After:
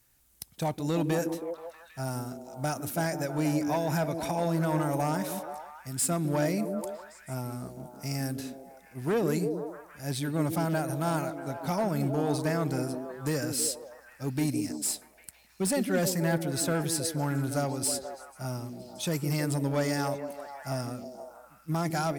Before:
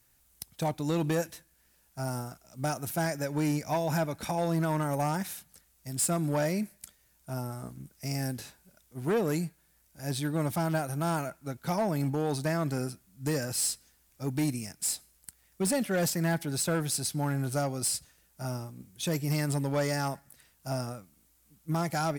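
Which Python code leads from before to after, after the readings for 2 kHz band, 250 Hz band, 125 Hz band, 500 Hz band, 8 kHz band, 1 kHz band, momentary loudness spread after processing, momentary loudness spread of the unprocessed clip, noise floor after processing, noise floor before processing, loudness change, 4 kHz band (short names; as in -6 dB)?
+0.5 dB, +2.0 dB, 0.0 dB, +1.5 dB, 0.0 dB, +0.5 dB, 13 LU, 13 LU, -57 dBFS, -67 dBFS, +0.5 dB, 0.0 dB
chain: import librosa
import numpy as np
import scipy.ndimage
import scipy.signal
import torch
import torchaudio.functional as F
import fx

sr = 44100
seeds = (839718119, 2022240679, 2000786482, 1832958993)

y = fx.echo_stepped(x, sr, ms=160, hz=280.0, octaves=0.7, feedback_pct=70, wet_db=-2.0)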